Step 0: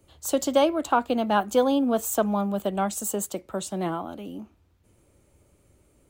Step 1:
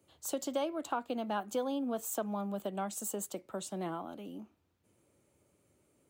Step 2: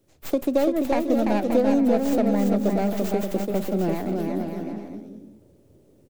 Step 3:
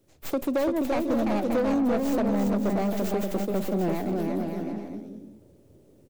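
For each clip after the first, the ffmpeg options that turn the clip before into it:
-af "acompressor=threshold=0.0447:ratio=2,highpass=130,volume=0.422"
-filter_complex "[0:a]acrossover=split=710[s0][s1];[s0]dynaudnorm=f=170:g=3:m=2.82[s2];[s1]aeval=exprs='abs(val(0))':c=same[s3];[s2][s3]amix=inputs=2:normalize=0,aecho=1:1:340|578|744.6|861.2|942.9:0.631|0.398|0.251|0.158|0.1,volume=2"
-af "asoftclip=type=tanh:threshold=0.106"

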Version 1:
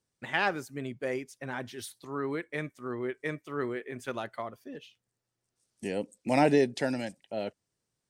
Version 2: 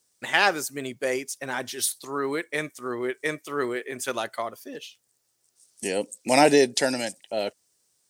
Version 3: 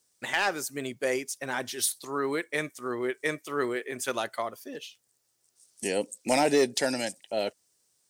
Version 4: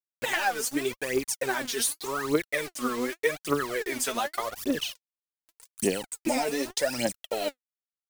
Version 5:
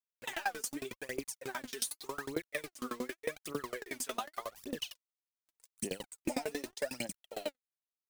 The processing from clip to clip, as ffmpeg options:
-af "bass=f=250:g=-10,treble=f=4000:g=12,volume=2.24"
-af "alimiter=limit=0.335:level=0:latency=1:release=312,asoftclip=type=hard:threshold=0.2,volume=0.841"
-af "acompressor=threshold=0.0158:ratio=5,acrusher=bits=7:mix=0:aa=0.000001,aphaser=in_gain=1:out_gain=1:delay=4.7:decay=0.73:speed=0.85:type=triangular,volume=2.24"
-af "aeval=exprs='val(0)*pow(10,-25*if(lt(mod(11*n/s,1),2*abs(11)/1000),1-mod(11*n/s,1)/(2*abs(11)/1000),(mod(11*n/s,1)-2*abs(11)/1000)/(1-2*abs(11)/1000))/20)':c=same,volume=0.708"

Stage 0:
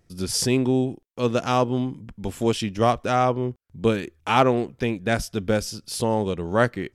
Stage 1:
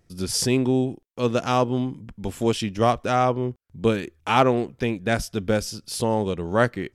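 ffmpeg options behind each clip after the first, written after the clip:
-af anull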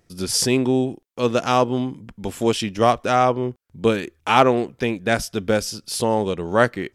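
-af "lowshelf=f=170:g=-7.5,volume=1.58"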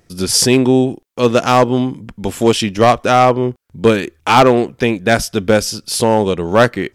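-af "asoftclip=type=hard:threshold=0.299,volume=2.37"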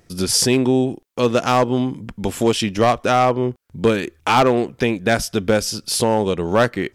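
-af "acompressor=threshold=0.0891:ratio=1.5"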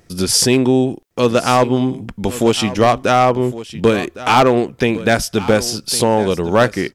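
-af "aecho=1:1:1109:0.168,volume=1.41"

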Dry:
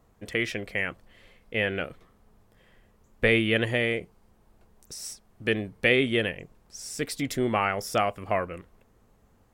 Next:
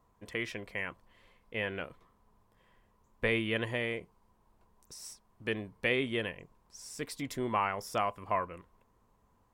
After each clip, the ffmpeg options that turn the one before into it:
-af "equalizer=f=1000:t=o:w=0.27:g=13.5,volume=0.376"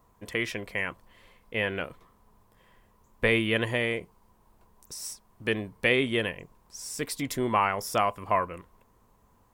-af "highshelf=f=9200:g=7.5,volume=2"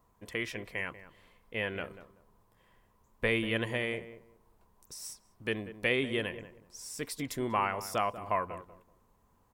-filter_complex "[0:a]asplit=2[s0][s1];[s1]adelay=190,lowpass=f=1100:p=1,volume=0.251,asplit=2[s2][s3];[s3]adelay=190,lowpass=f=1100:p=1,volume=0.23,asplit=2[s4][s5];[s5]adelay=190,lowpass=f=1100:p=1,volume=0.23[s6];[s0][s2][s4][s6]amix=inputs=4:normalize=0,volume=0.531"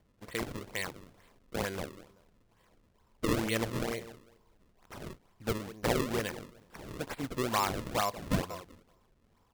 -af "acrusher=samples=33:mix=1:aa=0.000001:lfo=1:lforange=52.8:lforate=2.2"

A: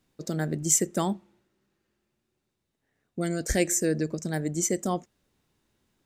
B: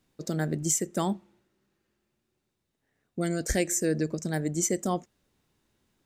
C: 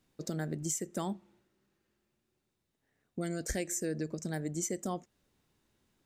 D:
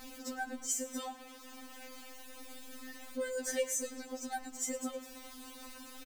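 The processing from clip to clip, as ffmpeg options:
-af "alimiter=limit=0.188:level=0:latency=1:release=382"
-af "acompressor=threshold=0.02:ratio=2,volume=0.794"
-af "aeval=exprs='val(0)+0.5*0.0075*sgn(val(0))':c=same,aecho=1:1:107|214|321|428:0.141|0.0636|0.0286|0.0129,afftfilt=real='re*3.46*eq(mod(b,12),0)':imag='im*3.46*eq(mod(b,12),0)':win_size=2048:overlap=0.75,volume=1.19"

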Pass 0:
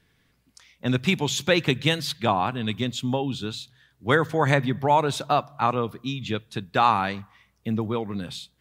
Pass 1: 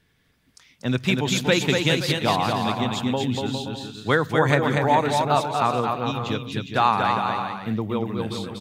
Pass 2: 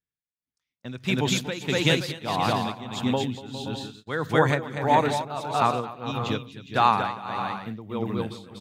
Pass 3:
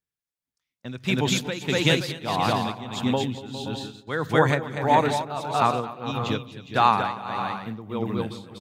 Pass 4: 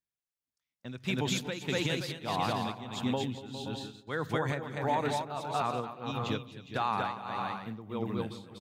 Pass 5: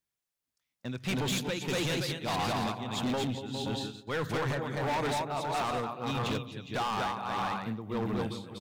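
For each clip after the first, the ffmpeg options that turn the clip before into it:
-af "aecho=1:1:240|408|525.6|607.9|665.5:0.631|0.398|0.251|0.158|0.1"
-af "tremolo=f=1.6:d=0.81,agate=range=0.0282:threshold=0.00501:ratio=16:detection=peak"
-filter_complex "[0:a]asplit=2[s0][s1];[s1]adelay=210,lowpass=f=980:p=1,volume=0.0841,asplit=2[s2][s3];[s3]adelay=210,lowpass=f=980:p=1,volume=0.52,asplit=2[s4][s5];[s5]adelay=210,lowpass=f=980:p=1,volume=0.52,asplit=2[s6][s7];[s7]adelay=210,lowpass=f=980:p=1,volume=0.52[s8];[s0][s2][s4][s6][s8]amix=inputs=5:normalize=0,volume=1.12"
-af "alimiter=limit=0.224:level=0:latency=1:release=92,volume=0.473"
-af "asoftclip=type=hard:threshold=0.0224,volume=1.78"

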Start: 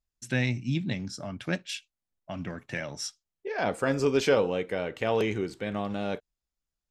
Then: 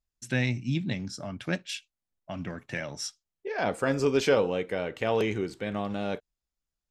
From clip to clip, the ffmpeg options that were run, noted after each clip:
-af anull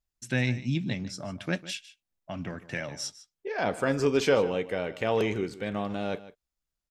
-af "aecho=1:1:151:0.15"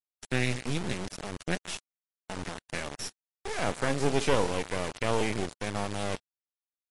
-af "acrusher=bits=3:dc=4:mix=0:aa=0.000001,volume=1.19" -ar 24000 -c:a libmp3lame -b:a 48k

